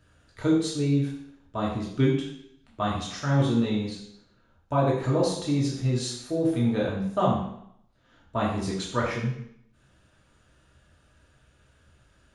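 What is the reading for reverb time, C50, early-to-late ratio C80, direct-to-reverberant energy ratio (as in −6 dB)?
0.70 s, 3.5 dB, 7.0 dB, −4.5 dB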